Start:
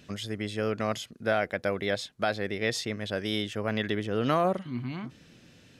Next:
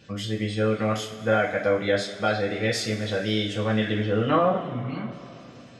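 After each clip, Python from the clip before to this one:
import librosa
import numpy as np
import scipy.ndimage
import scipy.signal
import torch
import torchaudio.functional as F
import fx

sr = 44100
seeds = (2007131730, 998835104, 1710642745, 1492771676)

y = fx.spec_gate(x, sr, threshold_db=-30, keep='strong')
y = fx.rev_double_slope(y, sr, seeds[0], early_s=0.33, late_s=3.3, knee_db=-18, drr_db=-4.5)
y = F.gain(torch.from_numpy(y), -1.5).numpy()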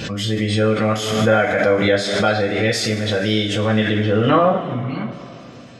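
y = fx.pre_swell(x, sr, db_per_s=41.0)
y = F.gain(torch.from_numpy(y), 6.0).numpy()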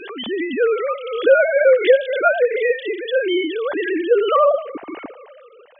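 y = fx.sine_speech(x, sr)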